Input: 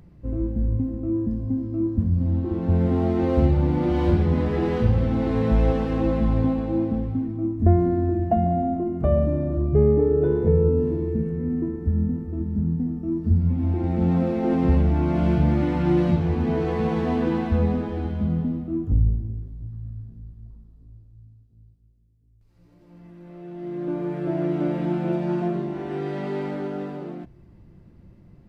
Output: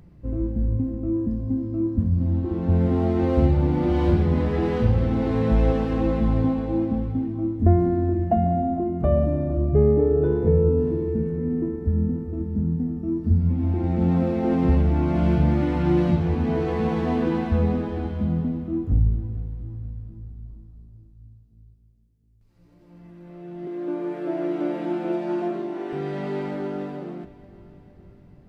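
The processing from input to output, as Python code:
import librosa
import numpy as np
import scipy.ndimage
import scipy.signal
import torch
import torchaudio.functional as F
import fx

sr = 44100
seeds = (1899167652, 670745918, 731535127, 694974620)

y = fx.highpass(x, sr, hz=240.0, slope=24, at=(23.67, 25.93))
y = fx.echo_feedback(y, sr, ms=460, feedback_pct=55, wet_db=-19)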